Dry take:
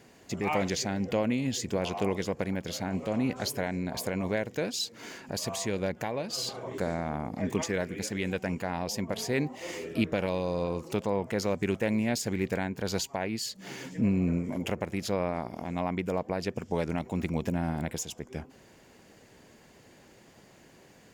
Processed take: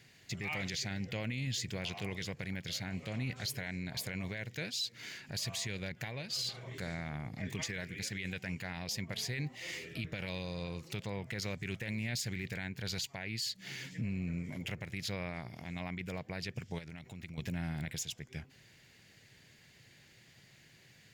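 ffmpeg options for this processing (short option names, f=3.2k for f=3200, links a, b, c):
-filter_complex "[0:a]asettb=1/sr,asplit=3[a][b][c];[a]atrim=end=16.784[d];[b]atrim=start=16.78:end=17.38,asetpts=PTS-STARTPTS,afade=t=in:d=0.004:c=qsin,afade=t=out:st=0.596:d=0.004:c=qsin,acompressor=threshold=-36dB:ratio=6:attack=3.2:release=140:knee=1:detection=peak[e];[c]atrim=start=17.376[f];[d][e]acrossfade=d=0.004:c1=hsin:c2=qsin[g];[g][f]acrossfade=d=0.004:c1=qsin:c2=hsin,equalizer=f=125:t=o:w=1:g=11,equalizer=f=250:t=o:w=1:g=-5,equalizer=f=500:t=o:w=1:g=-4,equalizer=f=1k:t=o:w=1:g=-6,equalizer=f=2k:t=o:w=1:g=9,equalizer=f=4k:t=o:w=1:g=9,alimiter=limit=-20dB:level=0:latency=1:release=10,highshelf=f=9.4k:g=7,volume=-9dB"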